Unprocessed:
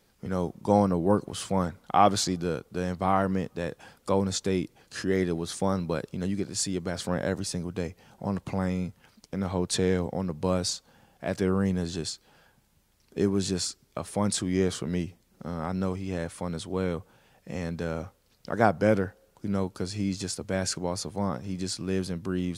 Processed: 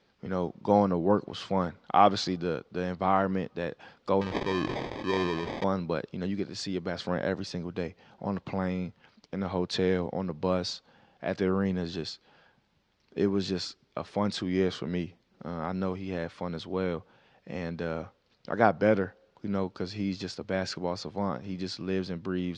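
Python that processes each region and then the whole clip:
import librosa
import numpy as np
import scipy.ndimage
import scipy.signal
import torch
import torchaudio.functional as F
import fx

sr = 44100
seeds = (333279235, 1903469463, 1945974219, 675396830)

y = fx.chain(x, sr, fx.peak_eq(hz=200.0, db=-4.5, octaves=1.1),
    fx.sample_hold(seeds[0], rate_hz=1400.0, jitter_pct=0),
    fx.sustainer(db_per_s=26.0), at=(4.21, 5.64))
y = scipy.signal.sosfilt(scipy.signal.butter(4, 4700.0, 'lowpass', fs=sr, output='sos'), y)
y = fx.low_shelf(y, sr, hz=93.0, db=-12.0)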